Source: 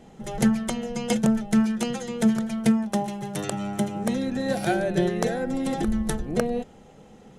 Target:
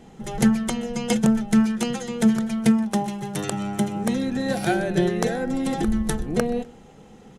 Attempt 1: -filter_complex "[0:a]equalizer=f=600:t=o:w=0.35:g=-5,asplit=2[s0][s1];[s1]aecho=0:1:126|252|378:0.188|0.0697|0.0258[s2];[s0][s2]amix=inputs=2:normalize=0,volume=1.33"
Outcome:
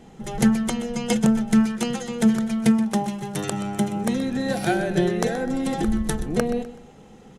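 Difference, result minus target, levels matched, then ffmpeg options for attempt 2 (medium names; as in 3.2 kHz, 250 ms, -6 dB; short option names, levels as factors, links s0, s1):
echo-to-direct +9 dB
-filter_complex "[0:a]equalizer=f=600:t=o:w=0.35:g=-5,asplit=2[s0][s1];[s1]aecho=0:1:126|252:0.0668|0.0247[s2];[s0][s2]amix=inputs=2:normalize=0,volume=1.33"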